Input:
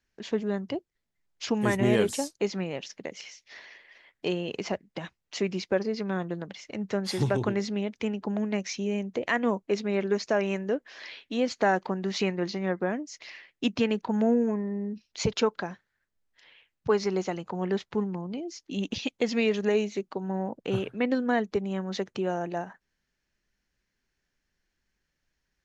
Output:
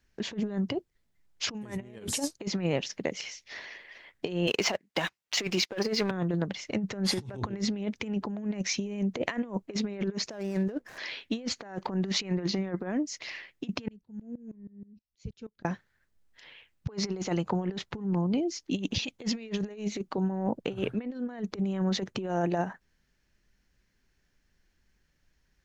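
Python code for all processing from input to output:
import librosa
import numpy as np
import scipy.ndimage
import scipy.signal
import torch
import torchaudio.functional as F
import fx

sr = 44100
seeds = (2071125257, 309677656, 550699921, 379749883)

y = fx.chain(x, sr, fx.highpass(hz=930.0, slope=6),
    fx.leveller(passes=2), at=(4.47, 6.11))
y = fx.chain(y, sr, fx.median_filter(points=15),
    fx.peak_eq(hz=8000.0, db=2.5, octaves=1.2), at=(10.3, 10.98))
y = fx.chain(y, sr, fx.tone_stack(knobs='10-0-1'),
    fx.tremolo_decay(direction='swelling', hz=6.3, depth_db=22), at=(13.88, 15.65))
y = fx.low_shelf(y, sr, hz=220.0, db=6.5)
y = fx.over_compress(y, sr, threshold_db=-30.0, ratio=-0.5)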